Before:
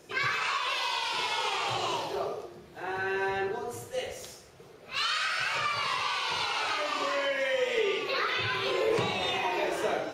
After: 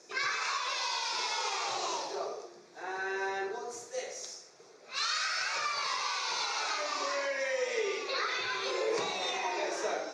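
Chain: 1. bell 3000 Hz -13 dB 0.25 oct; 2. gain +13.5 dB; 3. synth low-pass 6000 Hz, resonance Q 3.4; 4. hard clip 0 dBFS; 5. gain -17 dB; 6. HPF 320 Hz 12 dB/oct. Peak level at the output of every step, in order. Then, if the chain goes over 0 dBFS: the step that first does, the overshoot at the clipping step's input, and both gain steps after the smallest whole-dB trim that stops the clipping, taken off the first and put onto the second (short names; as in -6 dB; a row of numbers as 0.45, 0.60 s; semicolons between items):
-17.0, -3.5, -2.5, -2.5, -19.5, -19.5 dBFS; no overload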